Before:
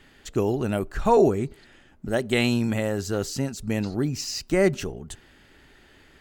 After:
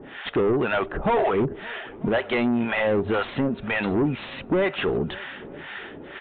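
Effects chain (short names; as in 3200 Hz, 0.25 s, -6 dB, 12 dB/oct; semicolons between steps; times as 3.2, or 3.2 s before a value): harmonic tremolo 2 Hz, depth 100%, crossover 680 Hz; compressor 4:1, threshold -31 dBFS, peak gain reduction 10 dB; overdrive pedal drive 30 dB, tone 1700 Hz, clips at -14.5 dBFS; downsampling 8000 Hz; notches 50/100 Hz; on a send: swung echo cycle 0.939 s, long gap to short 1.5:1, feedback 47%, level -21.5 dB; on the sum: gain +2.5 dB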